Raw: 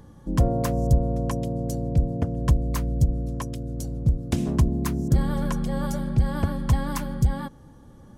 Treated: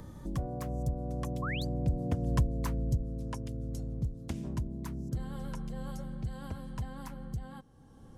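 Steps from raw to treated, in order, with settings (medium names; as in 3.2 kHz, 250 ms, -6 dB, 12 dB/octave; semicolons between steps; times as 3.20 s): Doppler pass-by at 2.35 s, 17 m/s, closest 5.5 m; painted sound rise, 1.42–1.65 s, 1–4.9 kHz -37 dBFS; three bands compressed up and down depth 70%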